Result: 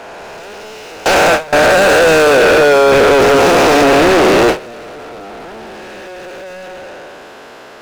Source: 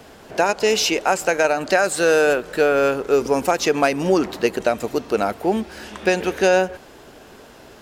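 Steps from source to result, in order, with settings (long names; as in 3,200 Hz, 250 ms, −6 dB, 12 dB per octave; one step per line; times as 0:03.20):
spectrum smeared in time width 539 ms
mid-hump overdrive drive 39 dB, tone 2,400 Hz, clips at −9.5 dBFS
noise gate with hold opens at −11 dBFS
level +7.5 dB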